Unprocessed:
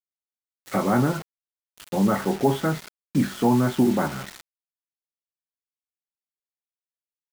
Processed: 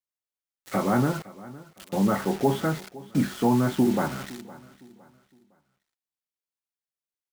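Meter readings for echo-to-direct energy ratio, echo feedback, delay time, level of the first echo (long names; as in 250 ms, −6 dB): −19.0 dB, 33%, 511 ms, −19.5 dB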